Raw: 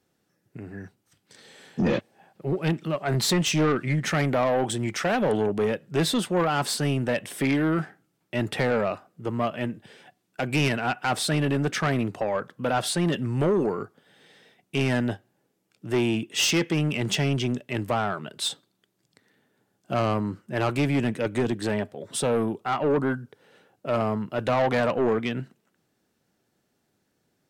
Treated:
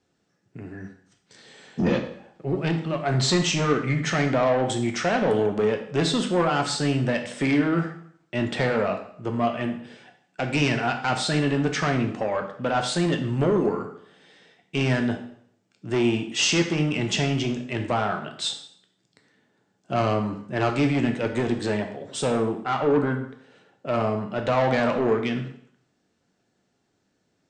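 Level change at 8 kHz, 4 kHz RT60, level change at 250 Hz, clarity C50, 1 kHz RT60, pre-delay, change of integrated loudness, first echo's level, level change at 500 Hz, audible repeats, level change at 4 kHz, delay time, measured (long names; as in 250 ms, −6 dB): −0.5 dB, 0.60 s, +1.5 dB, 9.0 dB, 0.60 s, 5 ms, +1.5 dB, no echo audible, +1.5 dB, no echo audible, +1.5 dB, no echo audible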